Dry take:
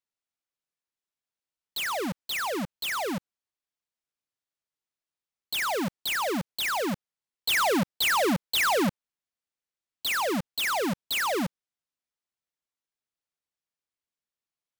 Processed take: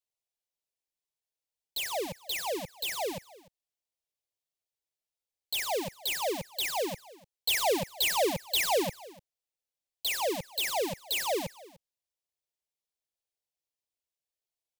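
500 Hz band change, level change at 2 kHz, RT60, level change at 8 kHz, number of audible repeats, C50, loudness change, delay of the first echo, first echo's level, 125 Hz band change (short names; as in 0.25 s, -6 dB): -1.0 dB, -7.0 dB, none, -0.5 dB, 1, none, -3.0 dB, 0.298 s, -21.0 dB, -8.5 dB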